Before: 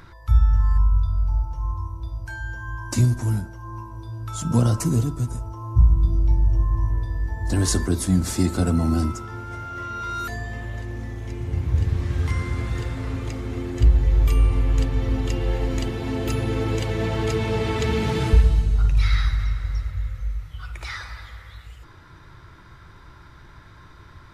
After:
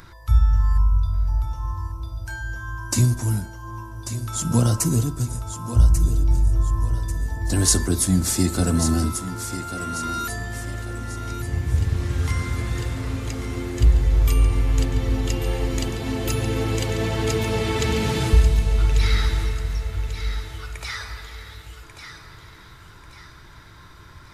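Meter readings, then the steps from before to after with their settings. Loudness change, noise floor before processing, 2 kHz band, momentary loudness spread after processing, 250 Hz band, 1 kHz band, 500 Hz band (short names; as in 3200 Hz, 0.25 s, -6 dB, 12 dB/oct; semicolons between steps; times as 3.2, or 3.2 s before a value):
+0.5 dB, -46 dBFS, +2.0 dB, 13 LU, +0.5 dB, +1.0 dB, +0.5 dB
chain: high shelf 4700 Hz +10 dB; thinning echo 1.141 s, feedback 41%, high-pass 220 Hz, level -9 dB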